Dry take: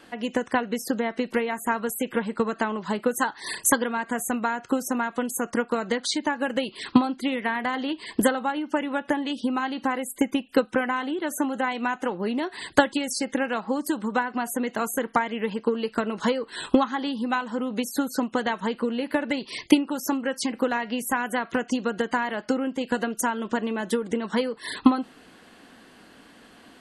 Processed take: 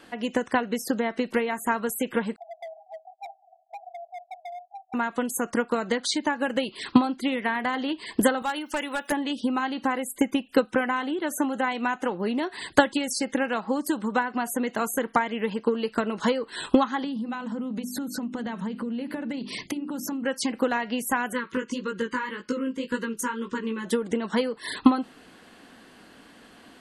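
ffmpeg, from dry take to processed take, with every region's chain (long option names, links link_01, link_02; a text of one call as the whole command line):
ffmpeg -i in.wav -filter_complex "[0:a]asettb=1/sr,asplit=3[link_01][link_02][link_03];[link_01]atrim=end=2.364[link_04];[link_02]atrim=start=2.36:end=4.94,asetpts=PTS-STARTPTS,afade=type=in:duration=0.004:curve=qsin,afade=type=out:start_time=2.576:duration=0.004:curve=qsin,asuperpass=centerf=720:order=20:qfactor=4.1,asoftclip=type=hard:threshold=-34.5dB[link_05];[link_03]atrim=start=4.936[link_06];[link_04][link_05]acrossfade=duration=0.004:curve1=hsin:curve2=qsin[link_07];[link_07][link_06]acrossfade=duration=0.004:curve1=qsin:curve2=hsin,asettb=1/sr,asplit=3[link_08][link_09][link_10];[link_08]atrim=end=8.424[link_11];[link_09]atrim=start=8.42:end=9.12,asetpts=PTS-STARTPTS,afade=type=in:duration=0.004:curve=qsin,afade=type=out:start_time=0.696:duration=0.004:curve=qsin,aemphasis=mode=production:type=riaa,asoftclip=type=hard:threshold=-21dB[link_12];[link_10]atrim=start=9.116[link_13];[link_11][link_12]acrossfade=duration=0.004:curve1=hsin:curve2=qsin[link_14];[link_14][link_13]acrossfade=duration=0.004:curve1=qsin:curve2=hsin,asettb=1/sr,asplit=3[link_15][link_16][link_17];[link_15]atrim=end=17.044[link_18];[link_16]atrim=start=17.04:end=20.25,asetpts=PTS-STARTPTS,afade=type=in:duration=0.004:curve=qsin,afade=type=out:start_time=3.206:duration=0.004:curve=qsin,equalizer=frequency=190:width=1.2:gain=13,bandreject=frequency=50:width_type=h:width=6,bandreject=frequency=100:width_type=h:width=6,bandreject=frequency=150:width_type=h:width=6,bandreject=frequency=200:width_type=h:width=6,bandreject=frequency=250:width_type=h:width=6,bandreject=frequency=300:width_type=h:width=6,bandreject=frequency=350:width_type=h:width=6,bandreject=frequency=400:width_type=h:width=6,acompressor=threshold=-29dB:ratio=5:attack=3.2:release=140:knee=1:detection=peak[link_19];[link_17]atrim=start=20.246[link_20];[link_18][link_19]acrossfade=duration=0.004:curve1=hsin:curve2=qsin[link_21];[link_21][link_20]acrossfade=duration=0.004:curve1=qsin:curve2=hsin,asettb=1/sr,asplit=3[link_22][link_23][link_24];[link_22]atrim=end=21.334[link_25];[link_23]atrim=start=21.33:end=23.85,asetpts=PTS-STARTPTS,afade=type=in:duration=0.004:curve=qsin,afade=type=out:start_time=2.516:duration=0.004:curve=qsin,flanger=delay=15.5:depth=4:speed=1.8,asuperstop=centerf=710:order=8:qfactor=1.9[link_26];[link_24]atrim=start=23.846[link_27];[link_25][link_26]acrossfade=duration=0.004:curve1=hsin:curve2=qsin[link_28];[link_28][link_27]acrossfade=duration=0.004:curve1=qsin:curve2=hsin" out.wav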